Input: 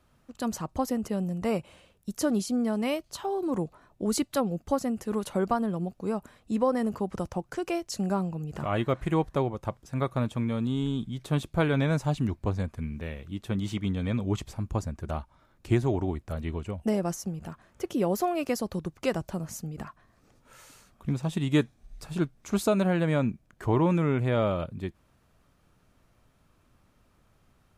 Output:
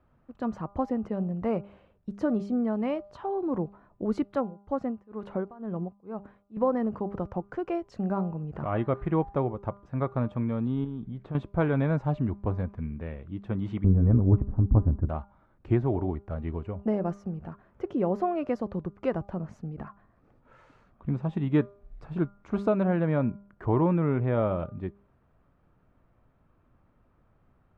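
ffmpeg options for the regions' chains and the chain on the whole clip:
ffmpeg -i in.wav -filter_complex "[0:a]asettb=1/sr,asplit=3[link_01][link_02][link_03];[link_01]atrim=end=4.354[link_04];[link_02]atrim=start=4.35:end=6.57,asetpts=PTS-STARTPTS,afade=type=in:duration=0.004:curve=qsin,afade=type=out:start_time=2.216:duration=0.004:curve=qsin,bass=frequency=250:gain=-1,treble=frequency=4000:gain=-4,tremolo=f=2.1:d=0.93[link_05];[link_03]atrim=start=6.566[link_06];[link_04][link_05]acrossfade=duration=0.004:curve1=hsin:curve2=qsin[link_07];[link_07][link_06]acrossfade=duration=0.004:curve1=qsin:curve2=hsin,asettb=1/sr,asplit=3[link_08][link_09][link_10];[link_08]atrim=end=10.844[link_11];[link_09]atrim=start=10.84:end=11.35,asetpts=PTS-STARTPTS,afade=type=in:duration=0.004:curve=qsin,afade=type=out:start_time=0.506:duration=0.004:curve=qsin,aemphasis=mode=reproduction:type=50fm,acompressor=threshold=-33dB:ratio=3:attack=3.2:release=140:knee=1:detection=peak[link_12];[link_10]atrim=start=11.346[link_13];[link_11][link_12]acrossfade=duration=0.004:curve1=hsin:curve2=qsin[link_14];[link_14][link_13]acrossfade=duration=0.004:curve1=qsin:curve2=hsin,asettb=1/sr,asplit=3[link_15][link_16][link_17];[link_15]atrim=end=13.844[link_18];[link_16]atrim=start=13.84:end=15.09,asetpts=PTS-STARTPTS,afade=type=in:duration=0.004:curve=qsin,afade=type=out:start_time=1.246:duration=0.004:curve=qsin,lowpass=frequency=1600:width=0.5412,lowpass=frequency=1600:width=1.3066,aemphasis=mode=reproduction:type=riaa,tremolo=f=190:d=0.519[link_19];[link_17]atrim=start=15.086[link_20];[link_18][link_19]acrossfade=duration=0.004:curve1=hsin:curve2=qsin[link_21];[link_21][link_20]acrossfade=duration=0.004:curve1=qsin:curve2=hsin,lowpass=1500,bandreject=frequency=200.8:width_type=h:width=4,bandreject=frequency=401.6:width_type=h:width=4,bandreject=frequency=602.4:width_type=h:width=4,bandreject=frequency=803.2:width_type=h:width=4,bandreject=frequency=1004:width_type=h:width=4,bandreject=frequency=1204.8:width_type=h:width=4,bandreject=frequency=1405.6:width_type=h:width=4" out.wav

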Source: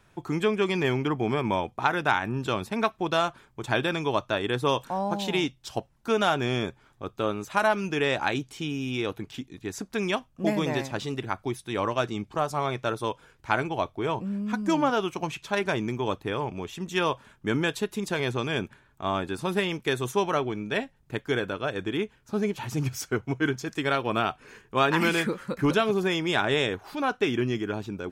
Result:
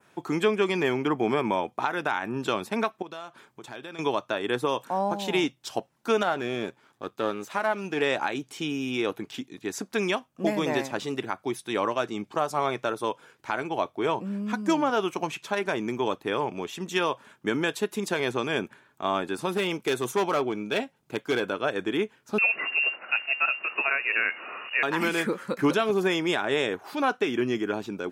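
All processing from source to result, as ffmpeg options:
ffmpeg -i in.wav -filter_complex "[0:a]asettb=1/sr,asplit=3[link_01][link_02][link_03];[link_01]atrim=end=3.024[link_04];[link_02]atrim=start=3.02:end=3.99,asetpts=PTS-STARTPTS,afade=type=in:duration=0.004:curve=qsin,afade=type=out:start_time=0.966:duration=0.004:curve=qsin,acompressor=threshold=-44dB:ratio=3:attack=3.2:release=140:knee=1:detection=peak,volume=31.5dB,asoftclip=hard,volume=-31.5dB[link_05];[link_03]atrim=start=3.986[link_06];[link_04][link_05]acrossfade=duration=0.004:curve1=hsin:curve2=qsin[link_07];[link_07][link_06]acrossfade=duration=0.004:curve1=qsin:curve2=hsin,asettb=1/sr,asplit=3[link_08][link_09][link_10];[link_08]atrim=end=6.234[link_11];[link_09]atrim=start=6.23:end=8.02,asetpts=PTS-STARTPTS,afade=type=in:duration=0.004:curve=qsin,afade=type=out:start_time=1.786:duration=0.004:curve=qsin,aeval=exprs='if(lt(val(0),0),0.447*val(0),val(0))':channel_layout=same,acrossover=split=2600[link_12][link_13];[link_13]acompressor=threshold=-42dB:ratio=4:attack=1:release=60[link_14];[link_12][link_14]amix=inputs=2:normalize=0[link_15];[link_10]atrim=start=8.016[link_16];[link_11][link_15]acrossfade=duration=0.004:curve1=hsin:curve2=qsin[link_17];[link_17][link_16]acrossfade=duration=0.004:curve1=qsin:curve2=hsin,asettb=1/sr,asplit=3[link_18][link_19][link_20];[link_18]atrim=end=19.574[link_21];[link_19]atrim=start=19.57:end=21.53,asetpts=PTS-STARTPTS,afade=type=in:duration=0.004:curve=qsin,afade=type=out:start_time=1.956:duration=0.004:curve=qsin,bandreject=frequency=1800:width=8.6,volume=22dB,asoftclip=hard,volume=-22dB[link_22];[link_20]atrim=start=21.526[link_23];[link_21][link_22]acrossfade=duration=0.004:curve1=hsin:curve2=qsin[link_24];[link_24][link_23]acrossfade=duration=0.004:curve1=qsin:curve2=hsin,asettb=1/sr,asplit=3[link_25][link_26][link_27];[link_25]atrim=end=22.384[link_28];[link_26]atrim=start=22.38:end=24.83,asetpts=PTS-STARTPTS,afade=type=in:duration=0.004:curve=qsin,afade=type=out:start_time=2.446:duration=0.004:curve=qsin,aeval=exprs='val(0)+0.5*0.015*sgn(val(0))':channel_layout=same,lowpass=frequency=2500:width_type=q:width=0.5098,lowpass=frequency=2500:width_type=q:width=0.6013,lowpass=frequency=2500:width_type=q:width=0.9,lowpass=frequency=2500:width_type=q:width=2.563,afreqshift=-2900,highpass=96[link_29];[link_27]atrim=start=24.826[link_30];[link_28][link_29]acrossfade=duration=0.004:curve1=hsin:curve2=qsin[link_31];[link_31][link_30]acrossfade=duration=0.004:curve1=qsin:curve2=hsin,adynamicequalizer=threshold=0.00631:dfrequency=4100:dqfactor=1:tfrequency=4100:tqfactor=1:attack=5:release=100:ratio=0.375:range=2.5:mode=cutabove:tftype=bell,highpass=220,alimiter=limit=-16.5dB:level=0:latency=1:release=253,volume=3dB" out.wav

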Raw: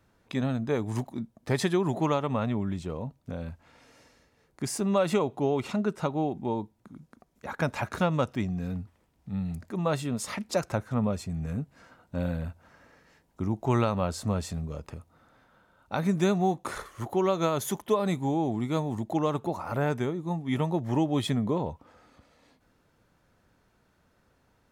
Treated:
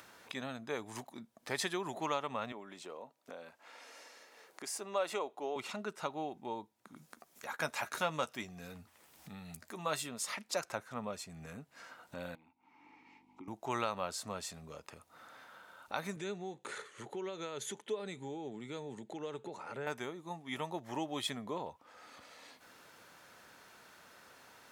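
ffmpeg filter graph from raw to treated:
ffmpeg -i in.wav -filter_complex "[0:a]asettb=1/sr,asplit=3[link_01][link_02][link_03];[link_01]atrim=end=2.524[link_04];[link_02]atrim=start=2.52:end=5.56,asetpts=PTS-STARTPTS,afade=type=in:duration=0.004:curve=qsin,afade=type=out:start_time=3.036:duration=0.004:curve=qsin,highpass=410,tiltshelf=frequency=760:gain=4[link_05];[link_03]atrim=start=5.556[link_06];[link_04][link_05]acrossfade=duration=0.004:curve1=hsin:curve2=qsin[link_07];[link_07][link_06]acrossfade=duration=0.004:curve1=qsin:curve2=hsin,asettb=1/sr,asplit=3[link_08][link_09][link_10];[link_08]atrim=end=6.964[link_11];[link_09]atrim=start=6.96:end=10.09,asetpts=PTS-STARTPTS,afade=type=in:duration=0.004:curve=qsin,afade=type=out:start_time=3.126:duration=0.004:curve=qsin,highshelf=frequency=6600:gain=7.5,asplit=2[link_12][link_13];[link_13]adelay=13,volume=-10.5dB[link_14];[link_12][link_14]amix=inputs=2:normalize=0,atrim=end_sample=138033[link_15];[link_10]atrim=start=10.086[link_16];[link_11][link_15]acrossfade=duration=0.004:curve1=hsin:curve2=qsin[link_17];[link_17][link_16]acrossfade=duration=0.004:curve1=qsin:curve2=hsin,asettb=1/sr,asplit=3[link_18][link_19][link_20];[link_18]atrim=end=12.354[link_21];[link_19]atrim=start=12.35:end=13.48,asetpts=PTS-STARTPTS,afade=type=in:duration=0.004:curve=qsin,afade=type=out:start_time=1.126:duration=0.004:curve=qsin,aeval=exprs='val(0)+0.00224*(sin(2*PI*50*n/s)+sin(2*PI*2*50*n/s)/2+sin(2*PI*3*50*n/s)/3+sin(2*PI*4*50*n/s)/4+sin(2*PI*5*50*n/s)/5)':channel_layout=same,asplit=3[link_22][link_23][link_24];[link_22]bandpass=frequency=300:width_type=q:width=8,volume=0dB[link_25];[link_23]bandpass=frequency=870:width_type=q:width=8,volume=-6dB[link_26];[link_24]bandpass=frequency=2240:width_type=q:width=8,volume=-9dB[link_27];[link_25][link_26][link_27]amix=inputs=3:normalize=0[link_28];[link_20]atrim=start=13.476[link_29];[link_21][link_28]acrossfade=duration=0.004:curve1=hsin:curve2=qsin[link_30];[link_30][link_29]acrossfade=duration=0.004:curve1=qsin:curve2=hsin,asettb=1/sr,asplit=3[link_31][link_32][link_33];[link_31]atrim=end=16.164[link_34];[link_32]atrim=start=16.16:end=19.87,asetpts=PTS-STARTPTS,afade=type=in:duration=0.004:curve=qsin,afade=type=out:start_time=3.706:duration=0.004:curve=qsin,acompressor=threshold=-29dB:ratio=3:attack=3.2:release=140:knee=1:detection=peak,highpass=110,equalizer=frequency=130:width_type=q:width=4:gain=8,equalizer=frequency=210:width_type=q:width=4:gain=4,equalizer=frequency=430:width_type=q:width=4:gain=9,equalizer=frequency=690:width_type=q:width=4:gain=-8,equalizer=frequency=1100:width_type=q:width=4:gain=-10,equalizer=frequency=5300:width_type=q:width=4:gain=-9,lowpass=frequency=8400:width=0.5412,lowpass=frequency=8400:width=1.3066[link_35];[link_33]atrim=start=19.866[link_36];[link_34][link_35]acrossfade=duration=0.004:curve1=hsin:curve2=qsin[link_37];[link_37][link_36]acrossfade=duration=0.004:curve1=qsin:curve2=hsin,highpass=frequency=1200:poles=1,acompressor=mode=upward:threshold=-41dB:ratio=2.5,volume=-2dB" out.wav

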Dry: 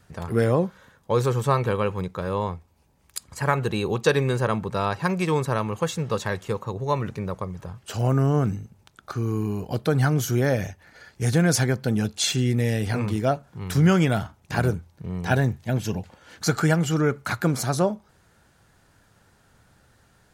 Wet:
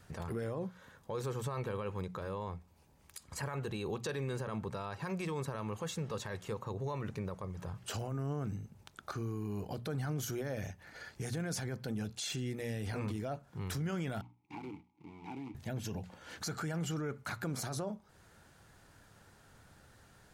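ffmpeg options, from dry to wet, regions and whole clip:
ffmpeg -i in.wav -filter_complex "[0:a]asettb=1/sr,asplit=3[link_01][link_02][link_03];[link_01]atrim=end=14.214[link_04];[link_02]atrim=start=14.21:end=15.55,asetpts=PTS-STARTPTS,afade=type=in:duration=0.004:curve=qsin,afade=type=out:start_time=1.336:duration=0.004:curve=qsin,acrusher=bits=2:mode=log:mix=0:aa=0.000001,asplit=3[link_05][link_06][link_07];[link_05]bandpass=frequency=300:width_type=q:width=8,volume=0dB[link_08];[link_06]bandpass=frequency=870:width_type=q:width=8,volume=-6dB[link_09];[link_07]bandpass=frequency=2240:width_type=q:width=8,volume=-9dB[link_10];[link_08][link_09][link_10]amix=inputs=3:normalize=0,acompressor=threshold=-38dB:ratio=4:attack=3.2:release=140:knee=1:detection=peak[link_11];[link_03]atrim=start=15.546[link_12];[link_04][link_11]acrossfade=duration=0.004:curve1=hsin:curve2=qsin[link_13];[link_13][link_12]acrossfade=duration=0.004:curve1=qsin:curve2=hsin,acompressor=threshold=-37dB:ratio=2,bandreject=frequency=60:width_type=h:width=6,bandreject=frequency=120:width_type=h:width=6,bandreject=frequency=180:width_type=h:width=6,bandreject=frequency=240:width_type=h:width=6,alimiter=level_in=4dB:limit=-24dB:level=0:latency=1:release=14,volume=-4dB,volume=-1.5dB" out.wav

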